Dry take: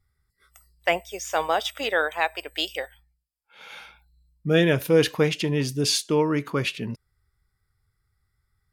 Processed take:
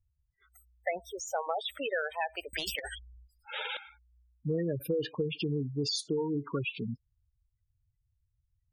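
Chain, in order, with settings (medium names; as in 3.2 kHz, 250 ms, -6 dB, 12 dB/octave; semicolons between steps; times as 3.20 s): spectral gate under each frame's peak -10 dB strong; compression, threshold -24 dBFS, peak gain reduction 9.5 dB; 2.53–3.77 s: spectrum-flattening compressor 10:1; trim -4 dB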